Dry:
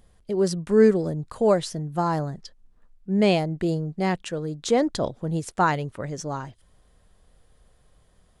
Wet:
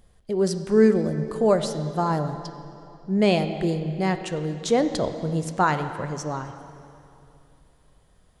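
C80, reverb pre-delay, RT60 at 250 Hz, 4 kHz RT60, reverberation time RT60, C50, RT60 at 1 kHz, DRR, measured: 10.5 dB, 14 ms, 3.0 s, 2.5 s, 2.8 s, 9.5 dB, 2.7 s, 8.5 dB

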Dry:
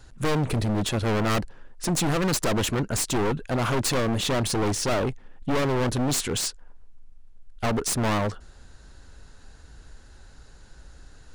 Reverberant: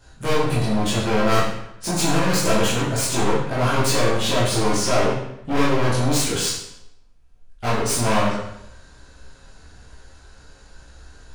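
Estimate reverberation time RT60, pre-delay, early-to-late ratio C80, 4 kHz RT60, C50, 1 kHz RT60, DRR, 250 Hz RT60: 0.75 s, 15 ms, 4.5 dB, 0.70 s, 1.5 dB, 0.75 s, -9.5 dB, 0.85 s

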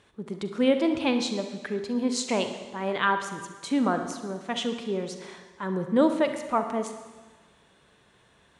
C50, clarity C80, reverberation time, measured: 8.0 dB, 10.0 dB, 1.4 s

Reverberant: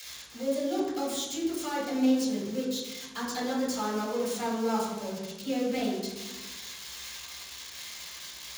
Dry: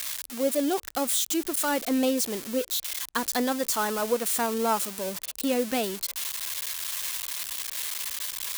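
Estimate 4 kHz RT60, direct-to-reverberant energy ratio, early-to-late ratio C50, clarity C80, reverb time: 0.80 s, -7.0 dB, 1.5 dB, 4.5 dB, 1.2 s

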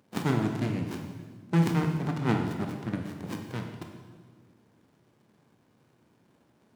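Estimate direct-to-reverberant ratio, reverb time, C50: 3.0 dB, 1.6 s, 5.0 dB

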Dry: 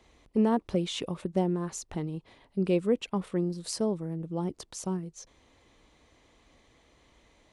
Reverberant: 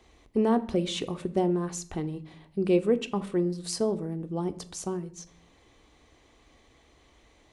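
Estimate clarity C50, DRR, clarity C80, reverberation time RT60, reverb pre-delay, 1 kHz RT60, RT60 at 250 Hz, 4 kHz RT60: 17.5 dB, 9.0 dB, 20.0 dB, 0.50 s, 3 ms, 0.50 s, 0.75 s, 0.40 s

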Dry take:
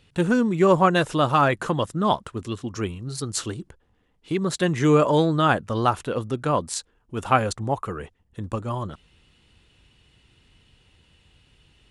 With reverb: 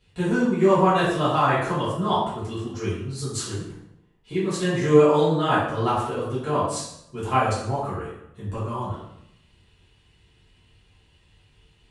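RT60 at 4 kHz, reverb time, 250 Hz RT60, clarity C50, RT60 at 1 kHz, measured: 0.65 s, 0.75 s, 0.85 s, 1.5 dB, 0.75 s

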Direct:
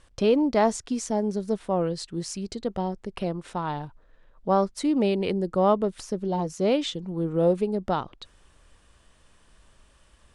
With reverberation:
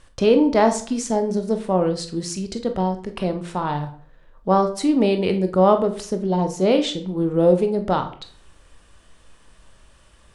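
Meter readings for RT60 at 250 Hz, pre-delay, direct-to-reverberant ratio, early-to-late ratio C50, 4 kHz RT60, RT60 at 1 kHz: 0.50 s, 22 ms, 6.5 dB, 11.5 dB, 0.40 s, 0.50 s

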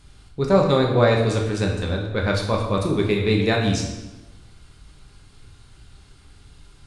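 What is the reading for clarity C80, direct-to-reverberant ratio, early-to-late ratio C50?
6.5 dB, -1.0 dB, 4.5 dB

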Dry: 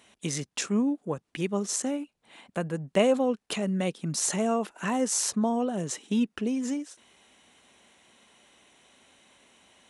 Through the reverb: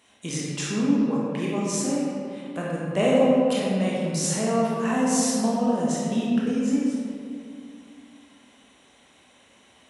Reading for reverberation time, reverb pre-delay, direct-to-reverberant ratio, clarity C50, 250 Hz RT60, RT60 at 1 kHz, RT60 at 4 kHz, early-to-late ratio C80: 2.4 s, 18 ms, -5.5 dB, -2.5 dB, 2.9 s, 2.2 s, 1.3 s, -0.5 dB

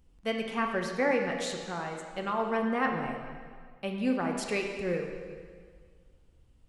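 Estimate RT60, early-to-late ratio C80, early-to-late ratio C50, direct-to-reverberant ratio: 1.8 s, 5.5 dB, 4.0 dB, 2.0 dB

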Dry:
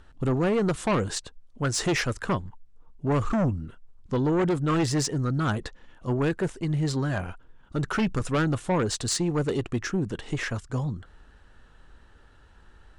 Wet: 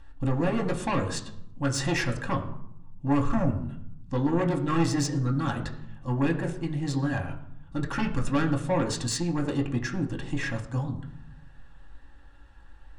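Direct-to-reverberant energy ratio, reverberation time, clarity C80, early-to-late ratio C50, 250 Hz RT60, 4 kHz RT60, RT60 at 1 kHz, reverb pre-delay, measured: 1.5 dB, 0.75 s, 13.5 dB, 12.0 dB, 1.1 s, 0.50 s, 0.75 s, 4 ms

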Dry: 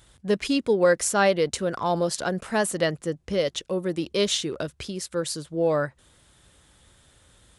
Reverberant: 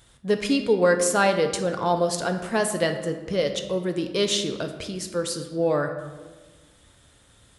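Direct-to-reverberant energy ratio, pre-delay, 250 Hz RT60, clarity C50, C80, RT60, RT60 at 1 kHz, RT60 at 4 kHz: 5.5 dB, 4 ms, 1.8 s, 8.5 dB, 10.5 dB, 1.3 s, 1.3 s, 0.85 s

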